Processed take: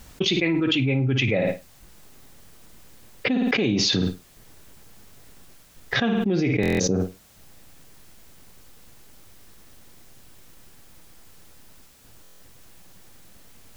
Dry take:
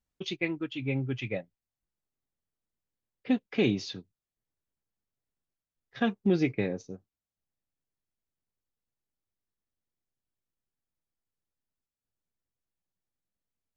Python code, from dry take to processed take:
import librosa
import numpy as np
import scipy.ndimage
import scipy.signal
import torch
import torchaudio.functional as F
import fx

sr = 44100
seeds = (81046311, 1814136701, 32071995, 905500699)

y = fx.room_flutter(x, sr, wall_m=9.3, rt60_s=0.24)
y = fx.buffer_glitch(y, sr, at_s=(6.61, 12.22), block=1024, repeats=7)
y = fx.env_flatten(y, sr, amount_pct=100)